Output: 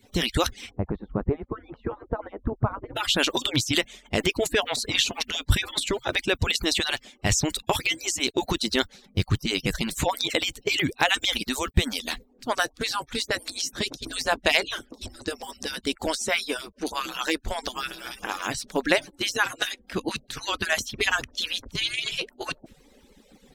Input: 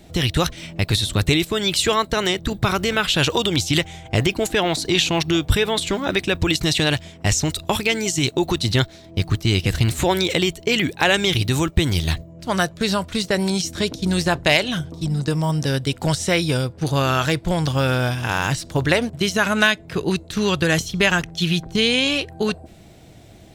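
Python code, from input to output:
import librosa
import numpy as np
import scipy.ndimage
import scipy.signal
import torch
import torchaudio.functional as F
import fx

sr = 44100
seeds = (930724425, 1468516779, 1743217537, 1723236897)

y = fx.hpss_only(x, sr, part='percussive')
y = fx.lowpass(y, sr, hz=1100.0, slope=24, at=(0.69, 2.95), fade=0.02)
y = F.gain(torch.from_numpy(y), -2.5).numpy()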